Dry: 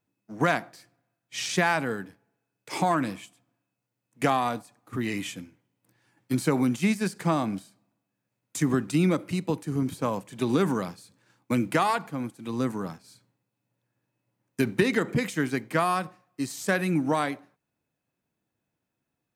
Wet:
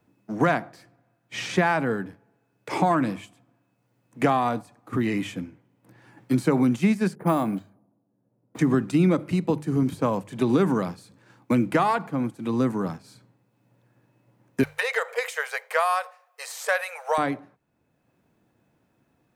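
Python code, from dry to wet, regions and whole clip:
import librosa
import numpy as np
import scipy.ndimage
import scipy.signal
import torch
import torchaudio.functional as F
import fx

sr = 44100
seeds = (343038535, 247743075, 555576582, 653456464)

y = fx.chain(x, sr, fx.env_lowpass(base_hz=540.0, full_db=-21.5),
    fx.resample_bad(factor=4, down='filtered', up='hold'),
    fx.low_shelf(hz=110.0, db=-9.5), at=(7.15, 8.59))
y = fx.chain(y, sr, fx.brickwall_highpass(low_hz=440.0),
    fx.tilt_eq(slope=2.5), at=(14.63, 17.18))
y = fx.high_shelf(y, sr, hz=2500.0, db=-11.0)
y = fx.hum_notches(y, sr, base_hz=50, count=3)
y = fx.band_squash(y, sr, depth_pct=40)
y = y * 10.0 ** (4.5 / 20.0)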